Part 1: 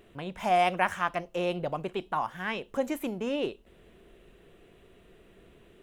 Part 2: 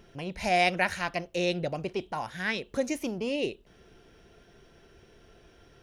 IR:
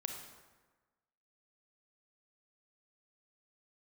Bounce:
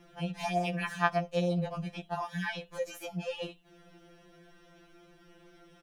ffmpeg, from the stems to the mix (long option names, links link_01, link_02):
-filter_complex "[0:a]volume=-3dB[link_01];[1:a]highpass=frequency=52:width=0.5412,highpass=frequency=52:width=1.3066,acompressor=threshold=-32dB:ratio=6,adelay=1.3,volume=-1dB[link_02];[link_01][link_02]amix=inputs=2:normalize=0,afftfilt=real='re*2.83*eq(mod(b,8),0)':imag='im*2.83*eq(mod(b,8),0)':win_size=2048:overlap=0.75"